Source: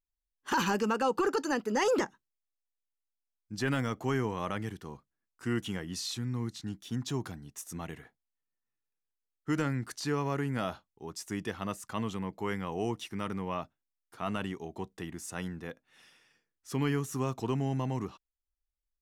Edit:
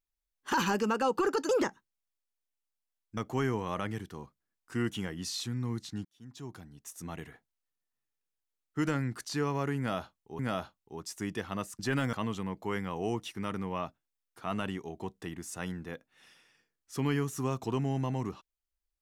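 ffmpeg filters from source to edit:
-filter_complex "[0:a]asplit=7[a][b][c][d][e][f][g];[a]atrim=end=1.492[h];[b]atrim=start=1.858:end=3.542[i];[c]atrim=start=3.878:end=6.76,asetpts=PTS-STARTPTS,afade=t=out:st=2.878:d=0.004:c=hsin[j];[d]atrim=start=6.76:end=11.102,asetpts=PTS-STARTPTS,afade=t=in:d=1.2[k];[e]atrim=start=10.488:end=11.892[l];[f]atrim=start=3.538:end=3.882[m];[g]atrim=start=11.888[n];[h][i]acrossfade=d=0.004:c1=hsin:c2=hsin[o];[j][k]concat=n=2:v=0:a=1[p];[o][p]acrossfade=d=0.004:c1=hsin:c2=hsin[q];[q][l]acrossfade=d=0.004:c1=hsin:c2=hsin[r];[r][m]acrossfade=d=0.004:c1=hsin:c2=hsin[s];[s][n]acrossfade=d=0.004:c1=hsin:c2=hsin"

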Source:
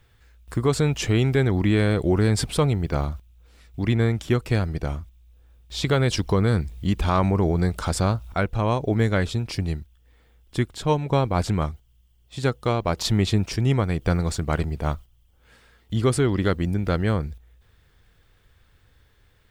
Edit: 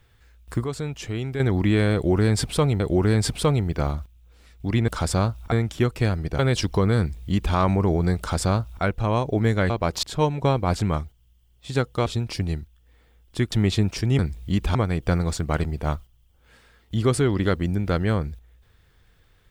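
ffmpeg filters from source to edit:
-filter_complex "[0:a]asplit=13[a][b][c][d][e][f][g][h][i][j][k][l][m];[a]atrim=end=0.642[n];[b]atrim=start=0.638:end=1.402,asetpts=PTS-STARTPTS,volume=-8.5dB[o];[c]atrim=start=1.398:end=2.802[p];[d]atrim=start=1.938:end=4.022[q];[e]atrim=start=7.738:end=8.382[r];[f]atrim=start=4.018:end=4.892[s];[g]atrim=start=5.938:end=9.252[t];[h]atrim=start=12.738:end=13.072[u];[i]atrim=start=10.708:end=12.742[v];[j]atrim=start=9.248:end=10.712[w];[k]atrim=start=13.068:end=13.742[x];[l]atrim=start=6.538:end=7.102[y];[m]atrim=start=13.738[z];[n][o]acrossfade=d=0.004:c1=hsin:c2=hsin[aa];[aa][p]acrossfade=d=0.004:c1=hsin:c2=hsin[ab];[ab][q]acrossfade=d=0.004:c1=hsin:c2=hsin[ac];[ac][r]acrossfade=d=0.004:c1=hsin:c2=hsin[ad];[ad][s]acrossfade=d=0.004:c1=hsin:c2=hsin[ae];[ae][t]acrossfade=d=0.004:c1=hsin:c2=hsin[af];[af][u]acrossfade=d=0.004:c1=hsin:c2=hsin[ag];[ag][v]acrossfade=d=0.004:c1=hsin:c2=hsin[ah];[ah][w]acrossfade=d=0.004:c1=hsin:c2=hsin[ai];[ai][x]acrossfade=d=0.004:c1=hsin:c2=hsin[aj];[aj][y]acrossfade=d=0.004:c1=hsin:c2=hsin[ak];[ak][z]acrossfade=d=0.004:c1=hsin:c2=hsin"

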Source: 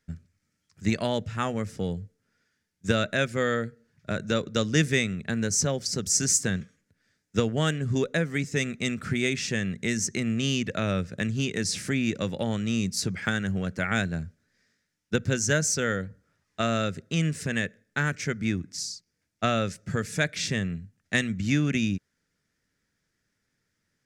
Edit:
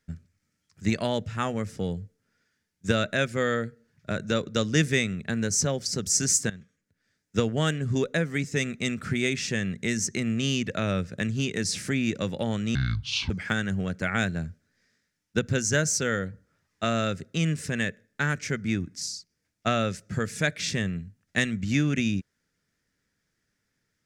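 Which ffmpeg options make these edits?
-filter_complex "[0:a]asplit=4[a][b][c][d];[a]atrim=end=6.5,asetpts=PTS-STARTPTS,afade=t=out:st=6.496:d=0.004:c=hsin:silence=0.149624[e];[b]atrim=start=6.5:end=12.754,asetpts=PTS-STARTPTS,afade=t=in:d=0.91:silence=0.149624[f];[c]atrim=start=12.75:end=13.07,asetpts=PTS-STARTPTS,asetrate=25578,aresample=44100,atrim=end_sample=24331,asetpts=PTS-STARTPTS[g];[d]atrim=start=13.066[h];[e][f]concat=n=2:v=0:a=1[i];[i][g]acrossfade=d=0.004:c1=hsin:c2=hsin[j];[j][h]acrossfade=d=0.004:c1=hsin:c2=hsin"

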